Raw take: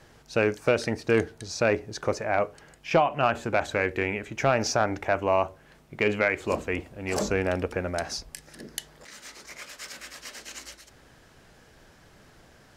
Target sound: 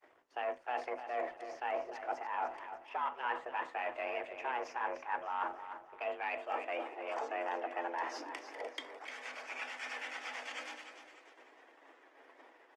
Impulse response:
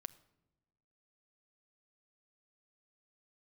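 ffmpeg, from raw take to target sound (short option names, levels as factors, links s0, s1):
-filter_complex "[0:a]aeval=exprs='if(lt(val(0),0),0.447*val(0),val(0))':c=same,bandreject=f=3800:w=6.5,agate=range=0.0224:threshold=0.00355:ratio=3:detection=peak,acrossover=split=8500[s0][s1];[s1]acompressor=threshold=0.00141:ratio=4:attack=1:release=60[s2];[s0][s2]amix=inputs=2:normalize=0,highshelf=f=7600:g=-5.5,areverse,acompressor=threshold=0.01:ratio=8,areverse,afreqshift=250,acrossover=split=410 3100:gain=0.112 1 0.141[s3][s4][s5];[s3][s4][s5]amix=inputs=3:normalize=0,aecho=1:1:299|598|897|1196:0.316|0.117|0.0433|0.016[s6];[1:a]atrim=start_sample=2205,atrim=end_sample=4410[s7];[s6][s7]afir=irnorm=-1:irlink=0,volume=3.76" -ar 48000 -c:a libopus -b:a 20k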